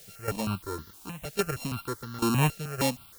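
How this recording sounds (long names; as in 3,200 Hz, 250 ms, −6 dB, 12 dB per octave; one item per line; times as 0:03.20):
a buzz of ramps at a fixed pitch in blocks of 32 samples
sample-and-hold tremolo 3.6 Hz, depth 85%
a quantiser's noise floor 10 bits, dither triangular
notches that jump at a steady rate 6.4 Hz 280–2,500 Hz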